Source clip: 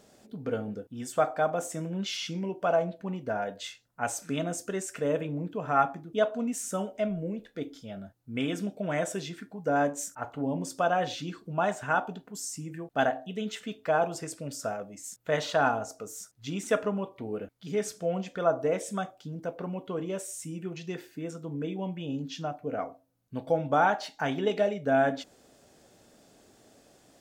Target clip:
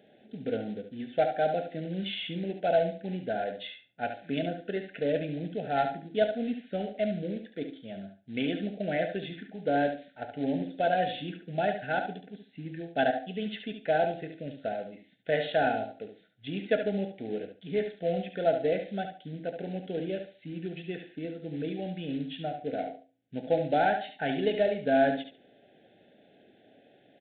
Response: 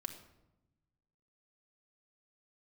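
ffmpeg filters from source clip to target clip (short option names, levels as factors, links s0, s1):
-af "highpass=150,aresample=8000,acrusher=bits=5:mode=log:mix=0:aa=0.000001,aresample=44100,asuperstop=centerf=1100:order=8:qfactor=1.6,aecho=1:1:71|142|213:0.398|0.0796|0.0159"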